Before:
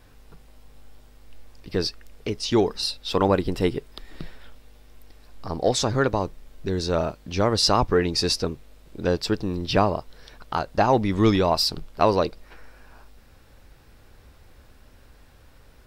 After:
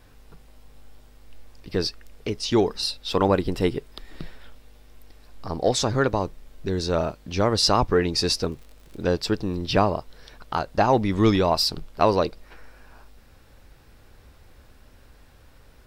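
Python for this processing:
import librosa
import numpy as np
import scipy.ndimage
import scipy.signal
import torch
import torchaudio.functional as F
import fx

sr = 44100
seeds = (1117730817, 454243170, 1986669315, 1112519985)

y = fx.dmg_crackle(x, sr, seeds[0], per_s=fx.line((8.31, 19.0), (9.01, 79.0)), level_db=-37.0, at=(8.31, 9.01), fade=0.02)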